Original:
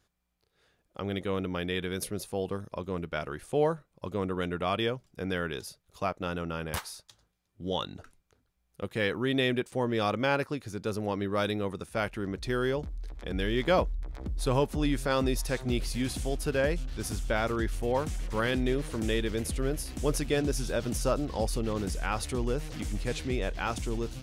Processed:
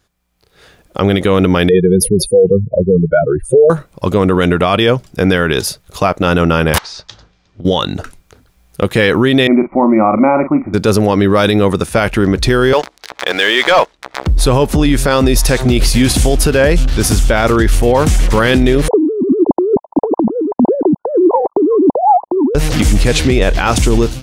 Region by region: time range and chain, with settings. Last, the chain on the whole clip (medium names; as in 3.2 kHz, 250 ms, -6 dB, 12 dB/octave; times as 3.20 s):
1.69–3.70 s: spectral contrast enhancement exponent 3.3 + Butterworth band-stop 1 kHz, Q 1.5
6.78–7.65 s: inverse Chebyshev low-pass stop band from 12 kHz, stop band 50 dB + compression 16:1, threshold -49 dBFS
9.47–10.74 s: Chebyshev low-pass 2.3 kHz, order 8 + static phaser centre 450 Hz, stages 6 + doubling 41 ms -10.5 dB
12.73–14.27 s: band-pass 740–6300 Hz + waveshaping leveller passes 2
18.88–22.55 s: formants replaced by sine waves + steep low-pass 990 Hz 96 dB/octave + compressor with a negative ratio -37 dBFS
whole clip: level rider gain up to 15 dB; loudness maximiser +11 dB; trim -1 dB